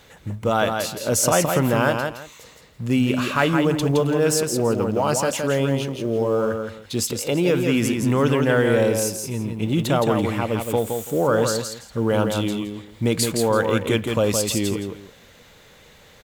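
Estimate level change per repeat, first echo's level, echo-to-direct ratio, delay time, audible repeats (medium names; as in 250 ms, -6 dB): -13.0 dB, -5.0 dB, -5.0 dB, 167 ms, 2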